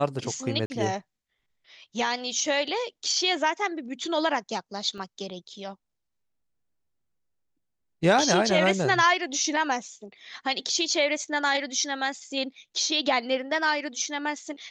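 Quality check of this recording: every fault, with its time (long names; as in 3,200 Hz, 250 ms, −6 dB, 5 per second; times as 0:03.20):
0:00.66–0:00.70: drop-out 40 ms
0:04.98: drop-out 3 ms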